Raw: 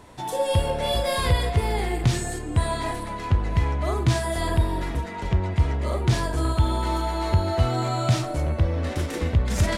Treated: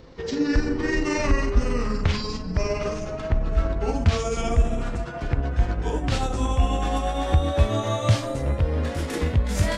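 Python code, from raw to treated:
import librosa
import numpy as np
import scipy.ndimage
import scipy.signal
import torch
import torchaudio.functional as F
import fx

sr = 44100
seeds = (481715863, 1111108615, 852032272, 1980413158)

y = fx.pitch_glide(x, sr, semitones=-11.5, runs='ending unshifted')
y = y * librosa.db_to_amplitude(2.0)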